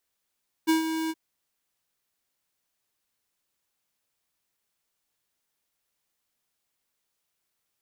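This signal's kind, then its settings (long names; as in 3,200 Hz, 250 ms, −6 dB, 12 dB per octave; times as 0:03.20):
note with an ADSR envelope square 321 Hz, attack 24 ms, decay 125 ms, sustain −9 dB, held 0.43 s, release 41 ms −20 dBFS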